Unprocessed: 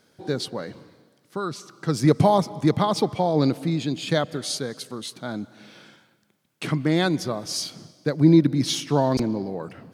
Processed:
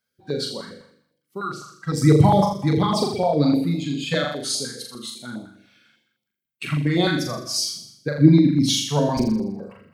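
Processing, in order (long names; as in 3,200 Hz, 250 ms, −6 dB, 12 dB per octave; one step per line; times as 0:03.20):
spectral dynamics exaggerated over time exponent 1.5
flutter between parallel walls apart 7 metres, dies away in 0.7 s
notch on a step sequencer 9.9 Hz 330–1,600 Hz
level +4.5 dB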